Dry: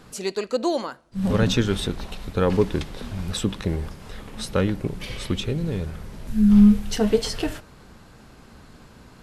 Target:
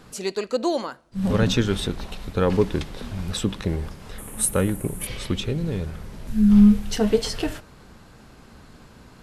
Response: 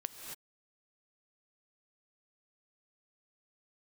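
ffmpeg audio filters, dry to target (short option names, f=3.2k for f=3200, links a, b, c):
-filter_complex "[0:a]asettb=1/sr,asplit=3[a][b][c];[a]atrim=end=4.184[d];[b]atrim=start=4.18:end=5.07,asetpts=PTS-STARTPTS,afade=t=in:d=0.004:c=qsin,afade=t=out:st=0.886:d=0.004:c=qsin,highshelf=f=7k:t=q:w=3:g=14[e];[c]atrim=start=5.066[f];[d][e]acrossfade=d=0.004:c1=hsin:c2=qsin[g];[g][f]acrossfade=d=0.004:c1=qsin:c2=hsin"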